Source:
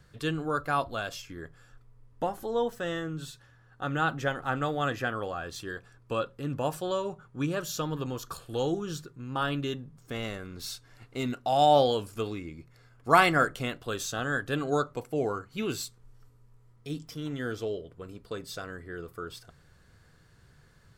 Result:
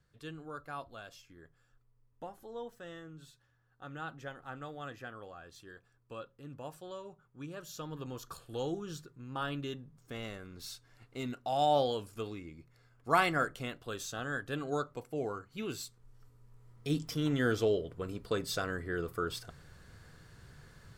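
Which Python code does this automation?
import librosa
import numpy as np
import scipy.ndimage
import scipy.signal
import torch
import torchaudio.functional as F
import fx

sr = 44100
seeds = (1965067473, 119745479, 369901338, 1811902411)

y = fx.gain(x, sr, db=fx.line((7.45, -14.5), (8.2, -7.0), (15.78, -7.0), (16.96, 4.0)))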